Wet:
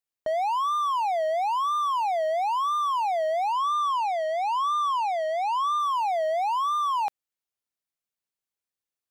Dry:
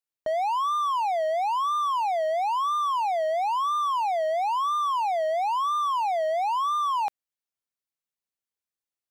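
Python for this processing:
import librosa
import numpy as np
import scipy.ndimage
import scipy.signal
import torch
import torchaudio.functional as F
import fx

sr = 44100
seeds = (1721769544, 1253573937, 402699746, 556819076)

y = fx.weighting(x, sr, curve='A', at=(3.52, 5.78), fade=0.02)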